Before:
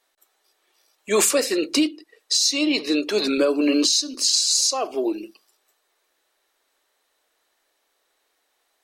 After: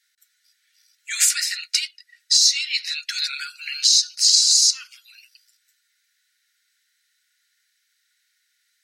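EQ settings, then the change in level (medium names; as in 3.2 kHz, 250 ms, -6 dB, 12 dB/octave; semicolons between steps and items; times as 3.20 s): rippled Chebyshev high-pass 1.4 kHz, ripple 6 dB; +5.5 dB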